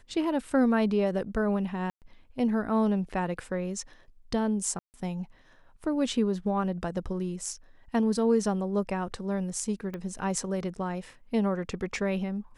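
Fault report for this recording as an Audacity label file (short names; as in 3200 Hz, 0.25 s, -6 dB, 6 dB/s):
1.900000	2.020000	gap 0.118 s
4.790000	4.940000	gap 0.149 s
9.940000	9.940000	pop -24 dBFS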